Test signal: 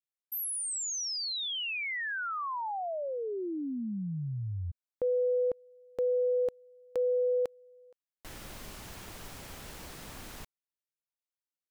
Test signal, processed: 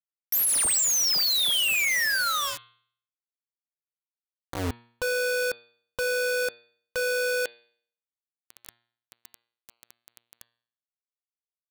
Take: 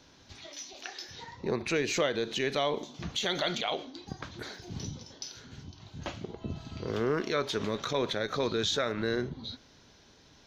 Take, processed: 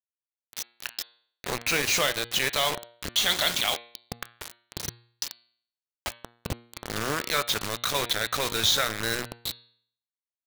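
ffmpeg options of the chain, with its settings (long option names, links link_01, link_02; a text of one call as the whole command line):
ffmpeg -i in.wav -af "equalizer=frequency=320:width_type=o:width=2.4:gain=-13,aeval=exprs='val(0)+0.000631*sin(2*PI*560*n/s)':channel_layout=same,acrusher=bits=5:mix=0:aa=0.000001,bandreject=frequency=118:width_type=h:width=4,bandreject=frequency=236:width_type=h:width=4,bandreject=frequency=354:width_type=h:width=4,bandreject=frequency=472:width_type=h:width=4,bandreject=frequency=590:width_type=h:width=4,bandreject=frequency=708:width_type=h:width=4,bandreject=frequency=826:width_type=h:width=4,bandreject=frequency=944:width_type=h:width=4,bandreject=frequency=1062:width_type=h:width=4,bandreject=frequency=1180:width_type=h:width=4,bandreject=frequency=1298:width_type=h:width=4,bandreject=frequency=1416:width_type=h:width=4,bandreject=frequency=1534:width_type=h:width=4,bandreject=frequency=1652:width_type=h:width=4,bandreject=frequency=1770:width_type=h:width=4,bandreject=frequency=1888:width_type=h:width=4,bandreject=frequency=2006:width_type=h:width=4,bandreject=frequency=2124:width_type=h:width=4,bandreject=frequency=2242:width_type=h:width=4,bandreject=frequency=2360:width_type=h:width=4,bandreject=frequency=2478:width_type=h:width=4,bandreject=frequency=2596:width_type=h:width=4,bandreject=frequency=2714:width_type=h:width=4,bandreject=frequency=2832:width_type=h:width=4,bandreject=frequency=2950:width_type=h:width=4,bandreject=frequency=3068:width_type=h:width=4,bandreject=frequency=3186:width_type=h:width=4,bandreject=frequency=3304:width_type=h:width=4,bandreject=frequency=3422:width_type=h:width=4,bandreject=frequency=3540:width_type=h:width=4,bandreject=frequency=3658:width_type=h:width=4,bandreject=frequency=3776:width_type=h:width=4,bandreject=frequency=3894:width_type=h:width=4,bandreject=frequency=4012:width_type=h:width=4,bandreject=frequency=4130:width_type=h:width=4,bandreject=frequency=4248:width_type=h:width=4,bandreject=frequency=4366:width_type=h:width=4,bandreject=frequency=4484:width_type=h:width=4,volume=9dB" out.wav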